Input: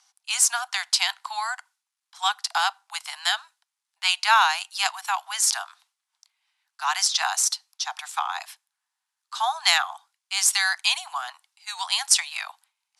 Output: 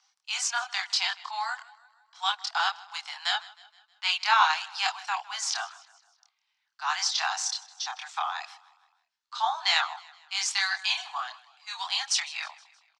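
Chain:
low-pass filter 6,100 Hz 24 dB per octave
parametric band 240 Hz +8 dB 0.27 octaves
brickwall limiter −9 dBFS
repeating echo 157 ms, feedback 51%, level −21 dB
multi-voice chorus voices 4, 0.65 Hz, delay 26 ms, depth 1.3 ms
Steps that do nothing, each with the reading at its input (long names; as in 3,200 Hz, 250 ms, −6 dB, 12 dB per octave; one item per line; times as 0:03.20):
parametric band 240 Hz: nothing at its input below 600 Hz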